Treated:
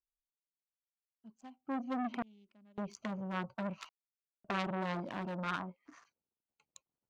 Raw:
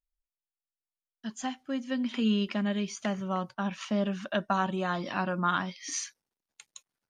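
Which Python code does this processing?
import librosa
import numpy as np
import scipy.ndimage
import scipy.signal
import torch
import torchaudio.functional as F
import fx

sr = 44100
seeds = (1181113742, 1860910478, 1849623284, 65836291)

y = fx.wiener(x, sr, points=25)
y = fx.curve_eq(y, sr, hz=(220.0, 1200.0, 5500.0), db=(0, 8, -27), at=(5.59, 6.05), fade=0.02)
y = fx.cheby_harmonics(y, sr, harmonics=(5,), levels_db=(-20,), full_scale_db=-14.0)
y = fx.tremolo_random(y, sr, seeds[0], hz=1.8, depth_pct=100)
y = fx.transformer_sat(y, sr, knee_hz=2200.0)
y = F.gain(torch.from_numpy(y), -2.0).numpy()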